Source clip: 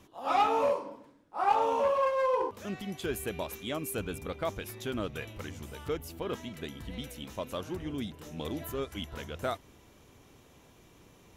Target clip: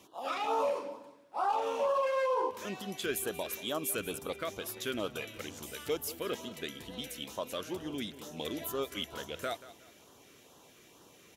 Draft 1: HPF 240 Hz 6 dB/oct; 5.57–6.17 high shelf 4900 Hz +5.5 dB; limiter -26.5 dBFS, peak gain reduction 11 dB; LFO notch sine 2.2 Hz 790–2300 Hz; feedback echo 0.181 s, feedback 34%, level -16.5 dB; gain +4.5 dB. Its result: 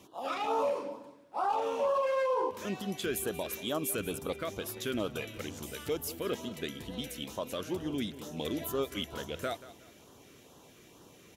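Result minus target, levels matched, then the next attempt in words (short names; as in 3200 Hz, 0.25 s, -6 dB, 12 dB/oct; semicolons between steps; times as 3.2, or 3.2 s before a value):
250 Hz band +3.0 dB
HPF 540 Hz 6 dB/oct; 5.57–6.17 high shelf 4900 Hz +5.5 dB; limiter -26.5 dBFS, peak gain reduction 10.5 dB; LFO notch sine 2.2 Hz 790–2300 Hz; feedback echo 0.181 s, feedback 34%, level -16.5 dB; gain +4.5 dB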